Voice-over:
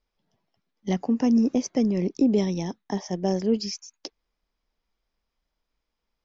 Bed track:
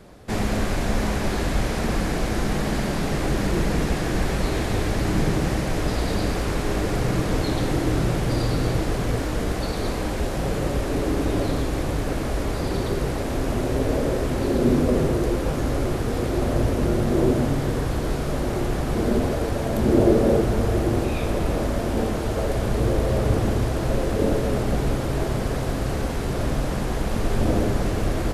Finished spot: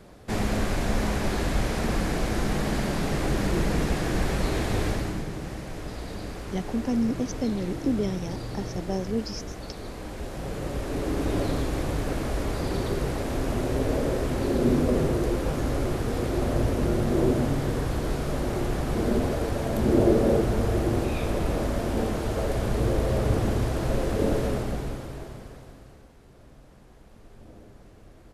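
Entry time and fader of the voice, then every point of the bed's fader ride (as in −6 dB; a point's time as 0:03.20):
5.65 s, −5.0 dB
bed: 0:04.89 −2.5 dB
0:05.26 −12 dB
0:09.90 −12 dB
0:11.35 −3 dB
0:24.45 −3 dB
0:26.12 −27.5 dB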